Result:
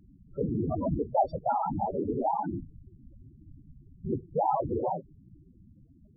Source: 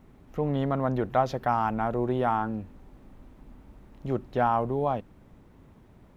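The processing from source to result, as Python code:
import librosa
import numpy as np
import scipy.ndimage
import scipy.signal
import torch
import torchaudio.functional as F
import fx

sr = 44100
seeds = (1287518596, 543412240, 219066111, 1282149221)

y = fx.whisperise(x, sr, seeds[0])
y = fx.spec_topn(y, sr, count=8)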